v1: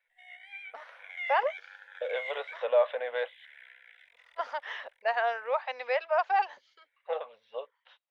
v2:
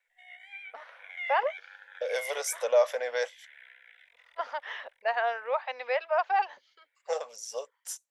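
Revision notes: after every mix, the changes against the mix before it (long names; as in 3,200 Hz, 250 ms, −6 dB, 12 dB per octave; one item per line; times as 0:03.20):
second voice: remove Chebyshev low-pass with heavy ripple 3,900 Hz, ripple 3 dB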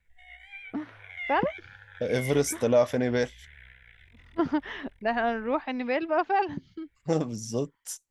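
master: remove elliptic high-pass filter 510 Hz, stop band 40 dB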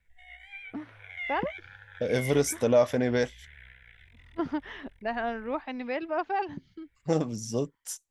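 first voice −4.5 dB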